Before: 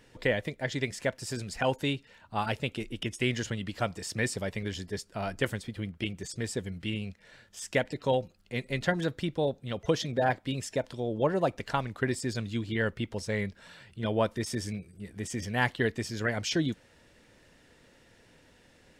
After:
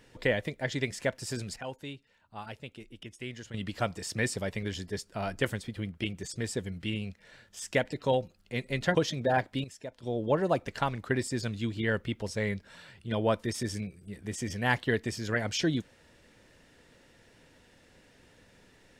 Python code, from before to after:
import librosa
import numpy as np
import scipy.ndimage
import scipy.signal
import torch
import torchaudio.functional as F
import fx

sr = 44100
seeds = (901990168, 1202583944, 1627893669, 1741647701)

y = fx.edit(x, sr, fx.clip_gain(start_s=1.56, length_s=1.98, db=-11.5),
    fx.cut(start_s=8.95, length_s=0.92),
    fx.clip_gain(start_s=10.56, length_s=0.39, db=-11.0), tone=tone)